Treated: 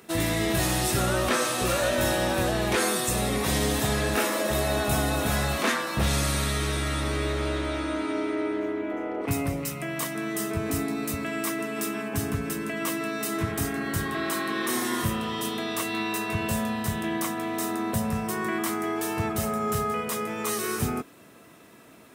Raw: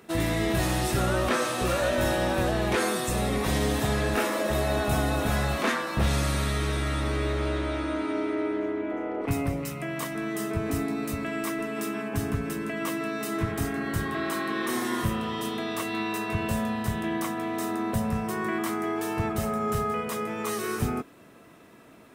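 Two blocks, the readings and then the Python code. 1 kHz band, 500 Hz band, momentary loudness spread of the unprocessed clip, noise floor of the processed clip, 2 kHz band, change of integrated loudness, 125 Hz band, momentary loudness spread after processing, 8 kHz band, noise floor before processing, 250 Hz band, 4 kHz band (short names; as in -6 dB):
+0.5 dB, 0.0 dB, 5 LU, -51 dBFS, +1.5 dB, +1.0 dB, -0.5 dB, 6 LU, +6.0 dB, -51 dBFS, 0.0 dB, +3.5 dB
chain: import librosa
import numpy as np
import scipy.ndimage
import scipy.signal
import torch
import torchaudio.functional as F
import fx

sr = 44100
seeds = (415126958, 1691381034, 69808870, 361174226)

y = scipy.signal.sosfilt(scipy.signal.butter(2, 53.0, 'highpass', fs=sr, output='sos'), x)
y = fx.high_shelf(y, sr, hz=3600.0, db=7.0)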